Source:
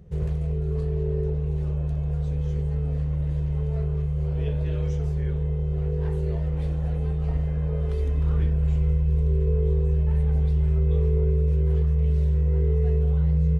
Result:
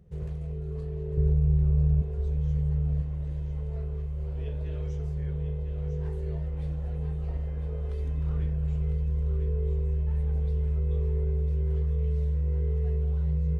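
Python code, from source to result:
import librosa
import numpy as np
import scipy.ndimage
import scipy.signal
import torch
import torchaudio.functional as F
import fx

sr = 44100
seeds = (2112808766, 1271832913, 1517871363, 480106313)

y = fx.bass_treble(x, sr, bass_db=12, treble_db=-12, at=(1.17, 2.02))
y = y + 10.0 ** (-8.0 / 20.0) * np.pad(y, (int(1002 * sr / 1000.0), 0))[:len(y)]
y = F.gain(torch.from_numpy(y), -8.0).numpy()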